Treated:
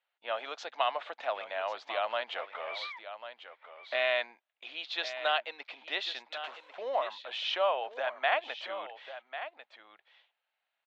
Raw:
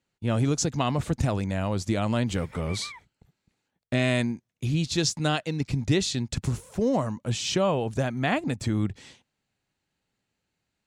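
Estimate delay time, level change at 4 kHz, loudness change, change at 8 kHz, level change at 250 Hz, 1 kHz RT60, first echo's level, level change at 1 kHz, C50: 1095 ms, -3.0 dB, -7.0 dB, under -25 dB, -32.0 dB, no reverb, -11.5 dB, 0.0 dB, no reverb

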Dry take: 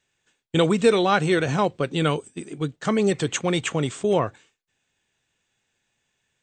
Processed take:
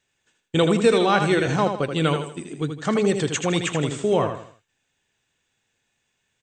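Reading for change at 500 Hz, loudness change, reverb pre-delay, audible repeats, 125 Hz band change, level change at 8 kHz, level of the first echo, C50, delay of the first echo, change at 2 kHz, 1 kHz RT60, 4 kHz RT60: +1.0 dB, +1.0 dB, no reverb, 4, +1.0 dB, +1.0 dB, -7.0 dB, no reverb, 80 ms, +1.0 dB, no reverb, no reverb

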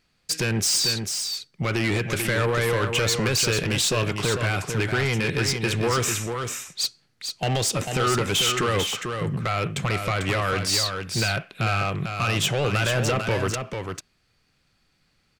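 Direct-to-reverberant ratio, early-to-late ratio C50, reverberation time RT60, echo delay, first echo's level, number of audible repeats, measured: no reverb, no reverb, no reverb, 445 ms, -6.0 dB, 1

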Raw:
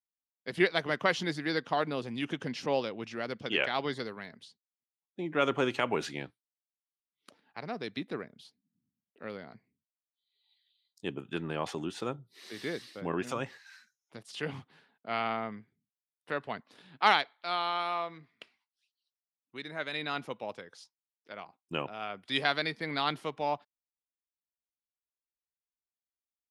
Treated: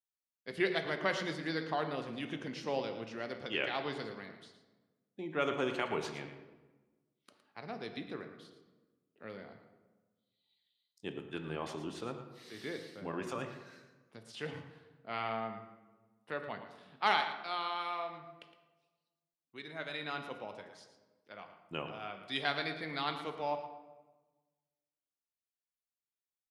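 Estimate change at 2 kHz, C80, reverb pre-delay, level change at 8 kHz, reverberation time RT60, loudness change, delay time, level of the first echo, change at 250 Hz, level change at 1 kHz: -5.0 dB, 8.5 dB, 3 ms, -5.5 dB, 1.2 s, -4.5 dB, 113 ms, -11.5 dB, -5.0 dB, -4.5 dB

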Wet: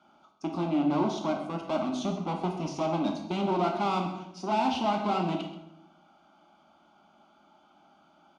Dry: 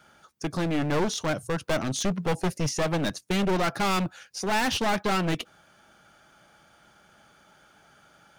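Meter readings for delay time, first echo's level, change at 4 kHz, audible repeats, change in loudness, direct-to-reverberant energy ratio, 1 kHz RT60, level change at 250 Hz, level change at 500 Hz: 130 ms, -13.5 dB, -8.0 dB, 1, -2.5 dB, 2.0 dB, 0.75 s, -0.5 dB, -2.5 dB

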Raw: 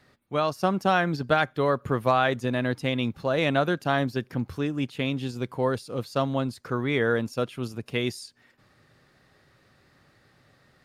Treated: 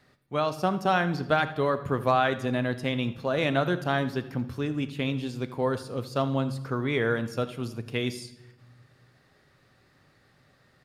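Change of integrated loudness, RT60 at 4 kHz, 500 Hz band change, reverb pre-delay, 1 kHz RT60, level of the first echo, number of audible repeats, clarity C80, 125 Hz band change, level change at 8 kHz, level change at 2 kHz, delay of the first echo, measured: -1.5 dB, 0.80 s, -1.5 dB, 5 ms, 0.95 s, -17.5 dB, 1, 14.5 dB, -0.5 dB, -2.0 dB, -1.5 dB, 81 ms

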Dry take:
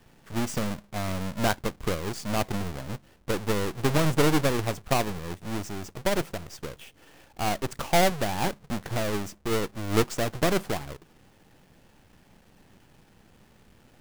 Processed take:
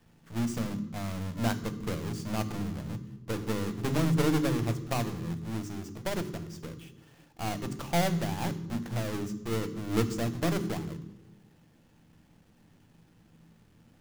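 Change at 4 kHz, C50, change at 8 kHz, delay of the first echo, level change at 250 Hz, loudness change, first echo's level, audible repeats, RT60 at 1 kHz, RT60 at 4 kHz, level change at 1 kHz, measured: -7.0 dB, 13.0 dB, -6.5 dB, no echo, -1.0 dB, -4.0 dB, no echo, no echo, 0.95 s, 0.75 s, -7.0 dB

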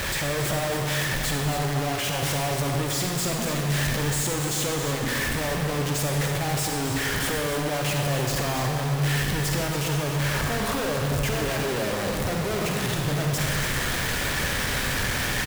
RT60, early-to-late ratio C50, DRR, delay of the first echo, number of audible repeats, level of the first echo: 1.6 s, 1.5 dB, 1.0 dB, 280 ms, 1, -9.0 dB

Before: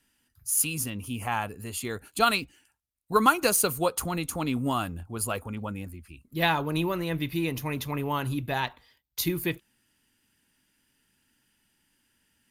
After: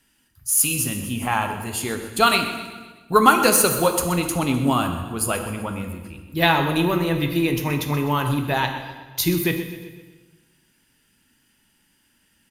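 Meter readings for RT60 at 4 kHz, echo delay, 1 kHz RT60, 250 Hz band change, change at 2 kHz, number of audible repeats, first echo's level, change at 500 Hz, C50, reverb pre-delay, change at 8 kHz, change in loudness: 1.2 s, 127 ms, 1.3 s, +8.0 dB, +7.0 dB, 4, -14.0 dB, +7.5 dB, 7.0 dB, 3 ms, +7.0 dB, +7.5 dB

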